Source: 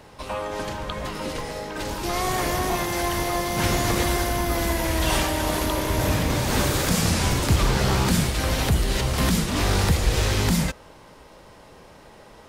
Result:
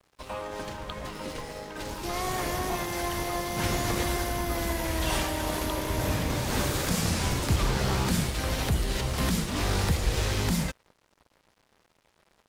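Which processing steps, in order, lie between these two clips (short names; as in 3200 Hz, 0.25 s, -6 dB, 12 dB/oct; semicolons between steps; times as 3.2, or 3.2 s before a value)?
crossover distortion -43.5 dBFS; gain -5 dB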